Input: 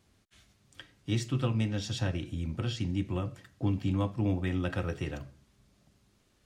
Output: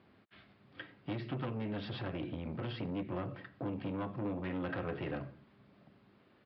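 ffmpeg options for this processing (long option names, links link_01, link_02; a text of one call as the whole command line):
ffmpeg -i in.wav -af "acompressor=threshold=-31dB:ratio=6,aresample=11025,asoftclip=type=tanh:threshold=-38dB,aresample=44100,highpass=160,lowpass=2200,volume=7dB" out.wav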